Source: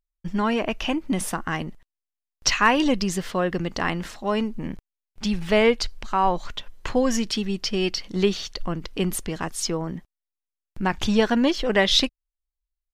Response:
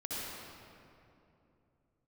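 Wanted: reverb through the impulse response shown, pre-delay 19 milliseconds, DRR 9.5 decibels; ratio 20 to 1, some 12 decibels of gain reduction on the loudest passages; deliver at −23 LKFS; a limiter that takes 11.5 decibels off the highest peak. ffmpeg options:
-filter_complex "[0:a]acompressor=threshold=-25dB:ratio=20,alimiter=limit=-23dB:level=0:latency=1,asplit=2[link_01][link_02];[1:a]atrim=start_sample=2205,adelay=19[link_03];[link_02][link_03]afir=irnorm=-1:irlink=0,volume=-12.5dB[link_04];[link_01][link_04]amix=inputs=2:normalize=0,volume=10dB"

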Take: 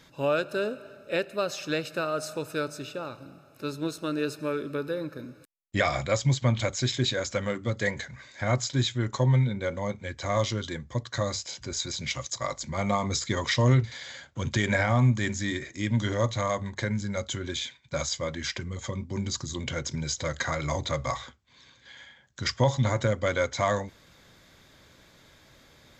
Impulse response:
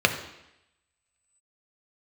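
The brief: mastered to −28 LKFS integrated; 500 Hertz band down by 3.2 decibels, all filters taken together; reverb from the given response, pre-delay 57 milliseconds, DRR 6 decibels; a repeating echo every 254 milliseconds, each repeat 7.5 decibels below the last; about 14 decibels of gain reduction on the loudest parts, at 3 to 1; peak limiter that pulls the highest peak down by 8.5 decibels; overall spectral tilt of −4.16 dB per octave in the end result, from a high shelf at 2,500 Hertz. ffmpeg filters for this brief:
-filter_complex "[0:a]equalizer=frequency=500:width_type=o:gain=-4,highshelf=frequency=2500:gain=3,acompressor=threshold=-37dB:ratio=3,alimiter=level_in=6dB:limit=-24dB:level=0:latency=1,volume=-6dB,aecho=1:1:254|508|762|1016|1270:0.422|0.177|0.0744|0.0312|0.0131,asplit=2[link_01][link_02];[1:a]atrim=start_sample=2205,adelay=57[link_03];[link_02][link_03]afir=irnorm=-1:irlink=0,volume=-23dB[link_04];[link_01][link_04]amix=inputs=2:normalize=0,volume=11dB"

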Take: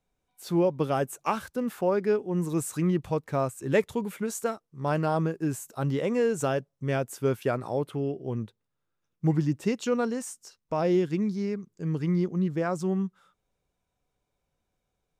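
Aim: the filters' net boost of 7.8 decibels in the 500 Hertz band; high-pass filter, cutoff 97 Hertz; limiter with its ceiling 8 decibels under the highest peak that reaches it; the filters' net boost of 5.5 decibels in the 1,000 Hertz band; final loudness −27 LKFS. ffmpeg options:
ffmpeg -i in.wav -af "highpass=97,equalizer=frequency=500:width_type=o:gain=8.5,equalizer=frequency=1000:width_type=o:gain=4,volume=-1.5dB,alimiter=limit=-15.5dB:level=0:latency=1" out.wav

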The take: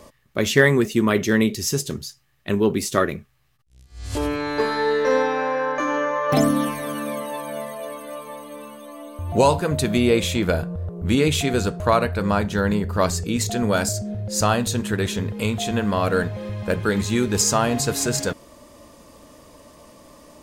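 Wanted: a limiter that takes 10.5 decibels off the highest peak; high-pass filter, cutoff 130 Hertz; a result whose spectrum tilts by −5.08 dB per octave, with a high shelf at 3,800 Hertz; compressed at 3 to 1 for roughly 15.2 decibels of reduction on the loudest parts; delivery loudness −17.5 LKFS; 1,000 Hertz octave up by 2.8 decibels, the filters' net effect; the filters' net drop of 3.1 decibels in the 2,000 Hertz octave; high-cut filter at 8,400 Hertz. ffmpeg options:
ffmpeg -i in.wav -af "highpass=130,lowpass=8400,equalizer=frequency=1000:width_type=o:gain=5,equalizer=frequency=2000:width_type=o:gain=-4,highshelf=frequency=3800:gain=-8,acompressor=threshold=-32dB:ratio=3,volume=17.5dB,alimiter=limit=-7dB:level=0:latency=1" out.wav

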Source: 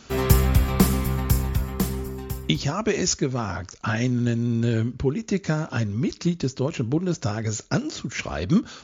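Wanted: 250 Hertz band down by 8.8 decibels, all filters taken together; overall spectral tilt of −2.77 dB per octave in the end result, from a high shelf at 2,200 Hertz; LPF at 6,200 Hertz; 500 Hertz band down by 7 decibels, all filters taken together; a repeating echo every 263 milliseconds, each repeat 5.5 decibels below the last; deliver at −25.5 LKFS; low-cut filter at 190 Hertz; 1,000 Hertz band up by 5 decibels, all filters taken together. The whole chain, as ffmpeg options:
ffmpeg -i in.wav -af "highpass=190,lowpass=6200,equalizer=frequency=250:width_type=o:gain=-7.5,equalizer=frequency=500:width_type=o:gain=-8.5,equalizer=frequency=1000:width_type=o:gain=7.5,highshelf=frequency=2200:gain=7,aecho=1:1:263|526|789|1052|1315|1578|1841:0.531|0.281|0.149|0.079|0.0419|0.0222|0.0118,volume=1dB" out.wav

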